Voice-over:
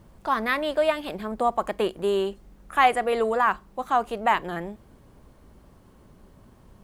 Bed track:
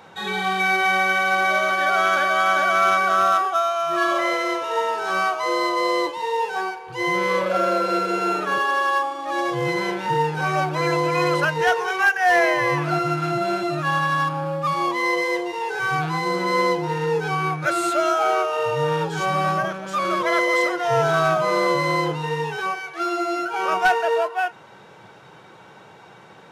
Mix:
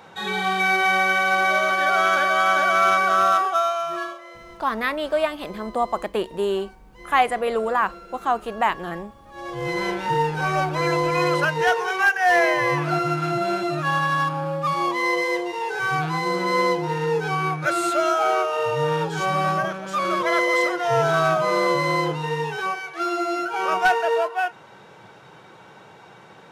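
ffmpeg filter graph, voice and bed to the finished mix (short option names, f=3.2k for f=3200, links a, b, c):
-filter_complex "[0:a]adelay=4350,volume=0.5dB[a];[1:a]volume=20dB,afade=t=out:st=3.67:d=0.51:silence=0.0944061,afade=t=in:st=9.32:d=0.53:silence=0.1[b];[a][b]amix=inputs=2:normalize=0"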